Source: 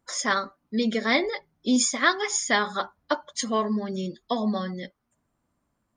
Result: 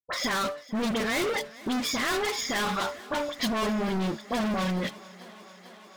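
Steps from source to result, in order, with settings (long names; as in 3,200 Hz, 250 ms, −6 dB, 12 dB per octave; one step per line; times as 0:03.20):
downward expander −44 dBFS
low-pass filter 4,000 Hz 24 dB per octave
hum removal 145.7 Hz, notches 4
brickwall limiter −18.5 dBFS, peak gain reduction 11 dB
leveller curve on the samples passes 3
hard clipping −26.5 dBFS, distortion −11 dB
all-pass dispersion highs, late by 47 ms, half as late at 1,900 Hz
on a send: feedback echo with a high-pass in the loop 444 ms, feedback 82%, high-pass 180 Hz, level −20 dB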